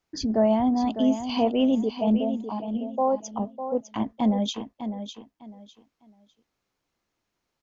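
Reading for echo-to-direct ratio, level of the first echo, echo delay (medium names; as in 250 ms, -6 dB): -9.0 dB, -9.5 dB, 603 ms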